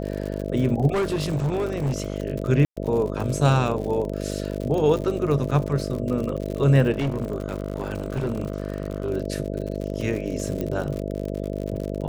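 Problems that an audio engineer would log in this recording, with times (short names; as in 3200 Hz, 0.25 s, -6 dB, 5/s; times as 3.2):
buzz 50 Hz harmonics 13 -29 dBFS
crackle 74/s -29 dBFS
0.93–2.16 clipped -20 dBFS
2.65–2.77 gap 0.116 s
6.91–9.1 clipped -20.5 dBFS
10.61 pop -15 dBFS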